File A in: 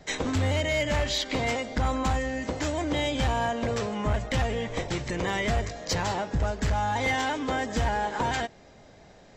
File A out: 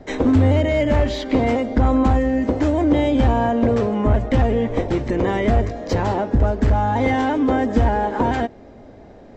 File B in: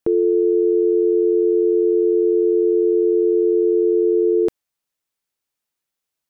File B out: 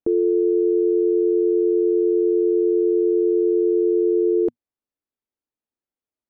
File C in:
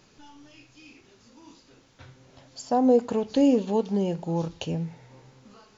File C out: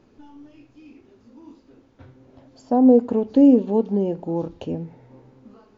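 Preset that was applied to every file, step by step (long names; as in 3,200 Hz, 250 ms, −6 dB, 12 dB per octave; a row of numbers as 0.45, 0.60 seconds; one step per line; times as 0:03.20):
drawn EQ curve 110 Hz 0 dB, 160 Hz −7 dB, 240 Hz +5 dB, 7,900 Hz −19 dB
loudness normalisation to −19 LKFS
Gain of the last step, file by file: +10.5, −3.5, +3.5 decibels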